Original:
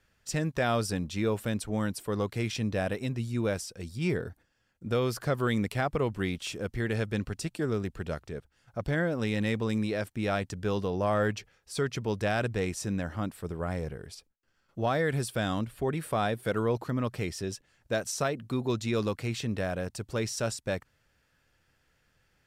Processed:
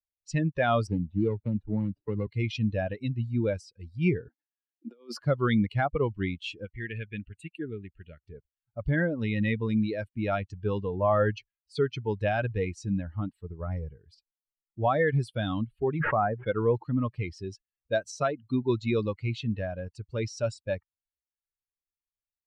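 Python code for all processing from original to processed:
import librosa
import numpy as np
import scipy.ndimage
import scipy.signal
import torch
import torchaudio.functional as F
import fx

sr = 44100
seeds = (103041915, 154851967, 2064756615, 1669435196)

y = fx.chain(x, sr, fx.median_filter(points=41),
    fx.lowpass(hz=7900.0, slope=12),
    fx.band_squash(depth_pct=70), at=(0.87, 2.27))
y = fx.chain(y, sr, fx.cheby1_highpass(hz=230.0, order=6),
    fx.over_compress(threshold_db=-35.0, ratio=-0.5), at=(4.28, 5.21))
y = fx.chain(y, sr, fx.tilt_eq(slope=1.5),
    fx.fixed_phaser(hz=2300.0, stages=4), at=(6.65, 8.24))
y = fx.chain(y, sr, fx.cheby2_lowpass(hz=9900.0, order=4, stop_db=80),
    fx.pre_swell(db_per_s=22.0), at=(16.0, 16.47))
y = fx.bin_expand(y, sr, power=2.0)
y = scipy.signal.sosfilt(scipy.signal.butter(2, 3500.0, 'lowpass', fs=sr, output='sos'), y)
y = fx.notch(y, sr, hz=1500.0, q=29.0)
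y = y * librosa.db_to_amplitude(7.0)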